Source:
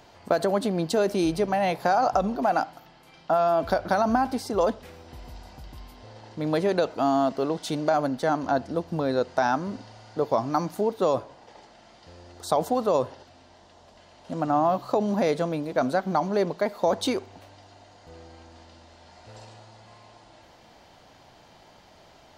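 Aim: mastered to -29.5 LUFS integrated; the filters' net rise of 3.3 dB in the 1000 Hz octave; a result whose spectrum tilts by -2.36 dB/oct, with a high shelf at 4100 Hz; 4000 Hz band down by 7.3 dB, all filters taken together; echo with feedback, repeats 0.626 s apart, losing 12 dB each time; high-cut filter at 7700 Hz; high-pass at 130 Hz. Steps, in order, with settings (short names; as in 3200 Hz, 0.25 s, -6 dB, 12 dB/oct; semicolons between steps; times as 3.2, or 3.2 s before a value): HPF 130 Hz; LPF 7700 Hz; bell 1000 Hz +5.5 dB; bell 4000 Hz -3.5 dB; high shelf 4100 Hz -9 dB; feedback echo 0.626 s, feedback 25%, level -12 dB; gain -5.5 dB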